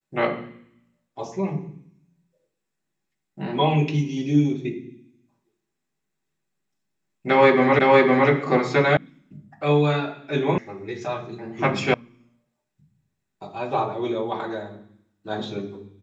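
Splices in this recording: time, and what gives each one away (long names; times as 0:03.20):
0:07.79: the same again, the last 0.51 s
0:08.97: cut off before it has died away
0:10.58: cut off before it has died away
0:11.94: cut off before it has died away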